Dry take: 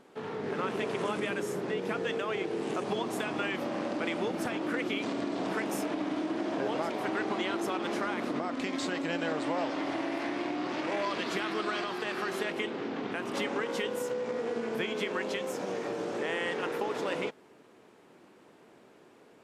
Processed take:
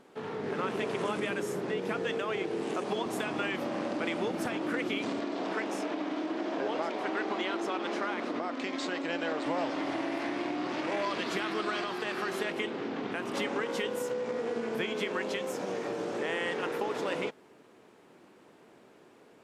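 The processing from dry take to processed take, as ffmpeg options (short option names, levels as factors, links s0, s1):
-filter_complex "[0:a]asettb=1/sr,asplit=3[s0][s1][s2];[s0]atrim=end=2.654[s3];[s1]atrim=start=2.65:end=3.06,asetpts=PTS-STARTPTS,afade=t=in:d=0.004:c=qsin,afade=t=out:st=0.406:d=0.004:c=qsin,highpass=170[s4];[s2]atrim=start=3.056[s5];[s3][s4]acrossfade=d=0.004:c1=hsin:c2=qsin[s6];[s6][s5]acrossfade=d=0.004:c1=qsin:c2=hsin,asettb=1/sr,asplit=3[s7][s8][s9];[s7]atrim=end=5.194[s10];[s8]atrim=start=5.19:end=9.46,asetpts=PTS-STARTPTS,afade=t=in:d=0.004:c=qsin,afade=t=out:st=4.266:d=0.004:c=qsin,highpass=250,lowpass=6500[s11];[s9]atrim=start=9.456[s12];[s10][s11]acrossfade=d=0.004:c1=hsin:c2=qsin[s13];[s13][s12]acrossfade=d=0.004:c1=qsin:c2=hsin"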